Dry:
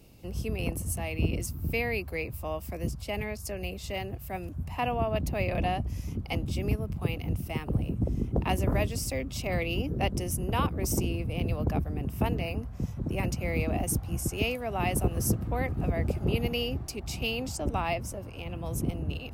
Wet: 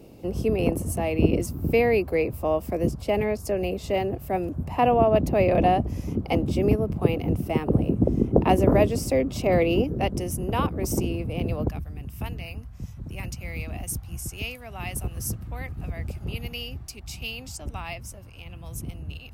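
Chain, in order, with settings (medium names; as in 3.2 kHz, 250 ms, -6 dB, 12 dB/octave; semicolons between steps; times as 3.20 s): peaking EQ 410 Hz +13 dB 2.9 oct, from 9.84 s +5 dB, from 11.69 s -10.5 dB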